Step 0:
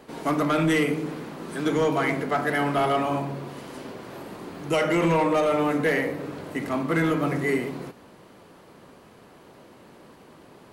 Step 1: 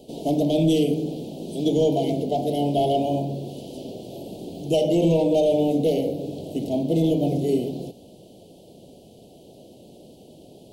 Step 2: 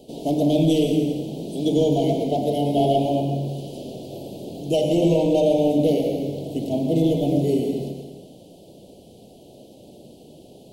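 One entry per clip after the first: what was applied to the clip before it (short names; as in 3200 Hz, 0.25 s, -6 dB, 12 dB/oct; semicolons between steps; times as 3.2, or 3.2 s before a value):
elliptic band-stop 690–3100 Hz, stop band 50 dB; dynamic EQ 8800 Hz, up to -5 dB, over -58 dBFS, Q 0.95; gain +4 dB
reverb RT60 1.2 s, pre-delay 93 ms, DRR 4 dB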